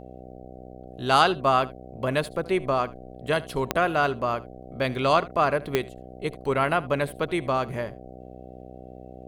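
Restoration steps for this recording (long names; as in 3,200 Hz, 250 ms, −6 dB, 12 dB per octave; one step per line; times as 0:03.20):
click removal
hum removal 62.9 Hz, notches 12
echo removal 76 ms −20 dB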